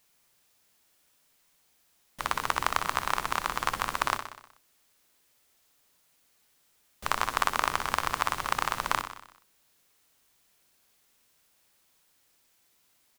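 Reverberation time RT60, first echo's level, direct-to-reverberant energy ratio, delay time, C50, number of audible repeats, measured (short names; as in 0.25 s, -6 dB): none, -9.5 dB, none, 62 ms, none, 6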